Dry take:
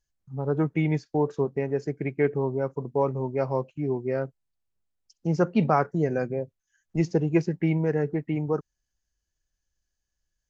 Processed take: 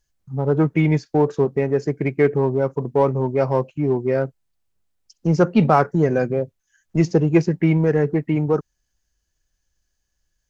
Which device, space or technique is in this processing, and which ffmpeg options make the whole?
parallel distortion: -filter_complex "[0:a]asplit=2[link_01][link_02];[link_02]asoftclip=type=hard:threshold=-24.5dB,volume=-9.5dB[link_03];[link_01][link_03]amix=inputs=2:normalize=0,volume=5.5dB"

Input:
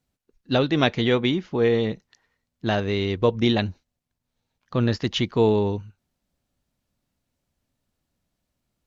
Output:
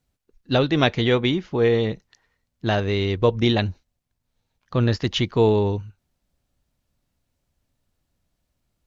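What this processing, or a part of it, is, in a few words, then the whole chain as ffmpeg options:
low shelf boost with a cut just above: -af "lowshelf=frequency=81:gain=7,equalizer=frequency=220:width_type=o:width=0.7:gain=-3,volume=1.5dB"

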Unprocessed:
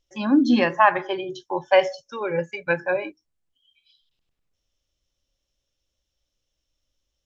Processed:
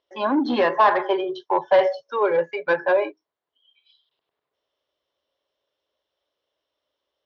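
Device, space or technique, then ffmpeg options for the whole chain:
overdrive pedal into a guitar cabinet: -filter_complex "[0:a]asplit=2[link_01][link_02];[link_02]highpass=frequency=720:poles=1,volume=21dB,asoftclip=type=tanh:threshold=-3.5dB[link_03];[link_01][link_03]amix=inputs=2:normalize=0,lowpass=frequency=3000:poles=1,volume=-6dB,highpass=95,equalizer=frequency=110:width_type=q:width=4:gain=-5,equalizer=frequency=200:width_type=q:width=4:gain=-8,equalizer=frequency=420:width_type=q:width=4:gain=9,equalizer=frequency=640:width_type=q:width=4:gain=7,equalizer=frequency=1000:width_type=q:width=4:gain=7,equalizer=frequency=2500:width_type=q:width=4:gain=-6,lowpass=frequency=4200:width=0.5412,lowpass=frequency=4200:width=1.3066,volume=-8.5dB"

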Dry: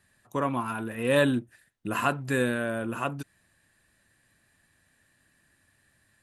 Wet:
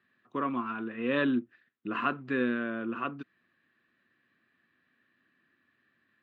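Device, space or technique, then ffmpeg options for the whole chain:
kitchen radio: -af "highpass=210,equalizer=frequency=240:width_type=q:width=4:gain=6,equalizer=frequency=350:width_type=q:width=4:gain=4,equalizer=frequency=600:width_type=q:width=4:gain=-6,equalizer=frequency=860:width_type=q:width=4:gain=-8,equalizer=frequency=1200:width_type=q:width=4:gain=6,lowpass=frequency=3400:width=0.5412,lowpass=frequency=3400:width=1.3066,volume=-4dB"

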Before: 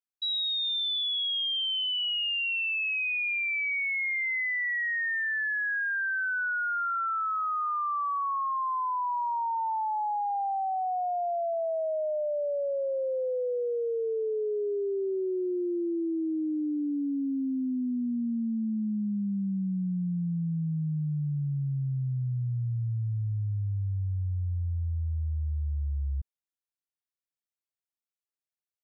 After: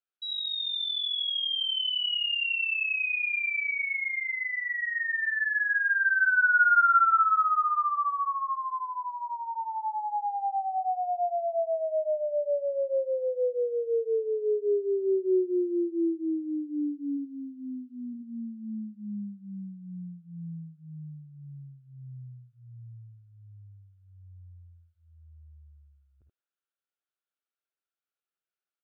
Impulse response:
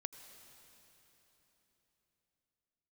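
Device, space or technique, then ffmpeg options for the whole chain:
phone earpiece: -filter_complex "[0:a]asplit=3[link_01][link_02][link_03];[link_01]afade=type=out:start_time=17.16:duration=0.02[link_04];[link_02]aemphasis=mode=production:type=bsi,afade=type=in:start_time=17.16:duration=0.02,afade=type=out:start_time=18.13:duration=0.02[link_05];[link_03]afade=type=in:start_time=18.13:duration=0.02[link_06];[link_04][link_05][link_06]amix=inputs=3:normalize=0,highpass=360,equalizer=frequency=370:width_type=q:width=4:gain=5,equalizer=frequency=970:width_type=q:width=4:gain=-8,equalizer=frequency=1400:width_type=q:width=4:gain=9,equalizer=frequency=2000:width_type=q:width=4:gain=-5,lowpass=frequency=3500:width=0.5412,lowpass=frequency=3500:width=1.3066,aecho=1:1:54|78:0.299|0.668"

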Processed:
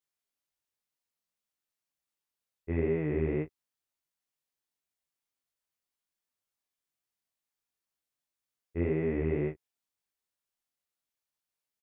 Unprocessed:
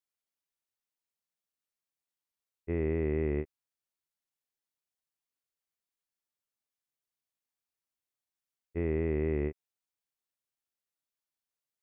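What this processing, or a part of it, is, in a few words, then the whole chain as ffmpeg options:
double-tracked vocal: -filter_complex "[0:a]asplit=2[link_01][link_02];[link_02]adelay=20,volume=-9dB[link_03];[link_01][link_03]amix=inputs=2:normalize=0,flanger=delay=18.5:depth=6.2:speed=2,volume=4dB"

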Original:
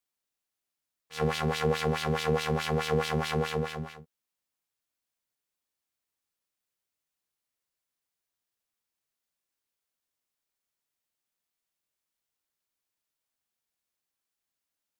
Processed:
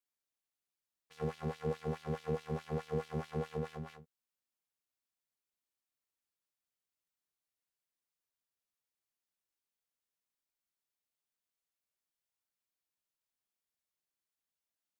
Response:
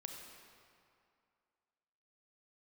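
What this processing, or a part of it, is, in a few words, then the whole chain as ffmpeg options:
de-esser from a sidechain: -filter_complex "[0:a]asplit=2[link_01][link_02];[link_02]highpass=frequency=4200:width=0.5412,highpass=frequency=4200:width=1.3066,apad=whole_len=661177[link_03];[link_01][link_03]sidechaincompress=threshold=-53dB:ratio=12:attack=0.89:release=29,volume=-7dB"

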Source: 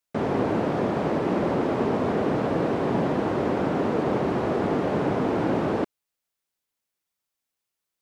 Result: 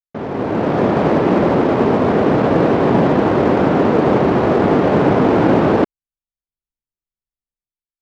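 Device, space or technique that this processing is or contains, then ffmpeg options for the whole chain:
voice memo with heavy noise removal: -af "anlmdn=3.98,dynaudnorm=framelen=170:gausssize=7:maxgain=16dB"

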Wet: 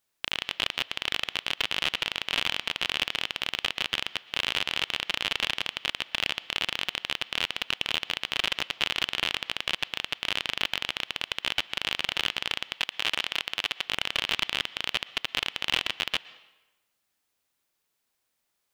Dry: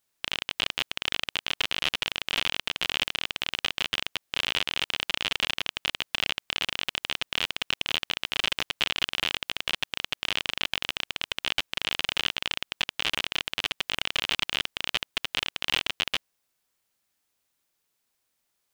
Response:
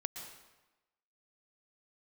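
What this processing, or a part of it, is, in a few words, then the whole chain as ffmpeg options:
filtered reverb send: -filter_complex "[0:a]asplit=2[link_01][link_02];[link_02]highpass=frequency=290:poles=1,lowpass=5000[link_03];[1:a]atrim=start_sample=2205[link_04];[link_03][link_04]afir=irnorm=-1:irlink=0,volume=-10.5dB[link_05];[link_01][link_05]amix=inputs=2:normalize=0,asettb=1/sr,asplit=3[link_06][link_07][link_08];[link_06]atrim=end=12.744[link_09];[link_07]atrim=start=12.74:end=13.85,asetpts=PTS-STARTPTS,afade=type=in:duration=0.004:curve=qsin,afade=type=out:start_time=1.106:duration=0.004:curve=qsin,lowshelf=frequency=320:gain=-6[link_10];[link_08]atrim=start=13.846[link_11];[link_09][link_10]acrossfade=duration=0.004:curve1=hsin:curve2=qsin[link_12];[link_12][link_11]acrossfade=duration=0.004:curve1=qsin:curve2=hsin,volume=-1.5dB"

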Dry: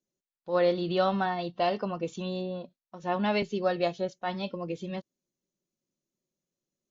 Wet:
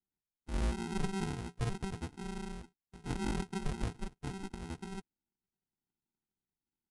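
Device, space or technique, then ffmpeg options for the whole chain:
crushed at another speed: -af "asetrate=88200,aresample=44100,acrusher=samples=38:mix=1:aa=0.000001,asetrate=22050,aresample=44100,volume=-8dB"

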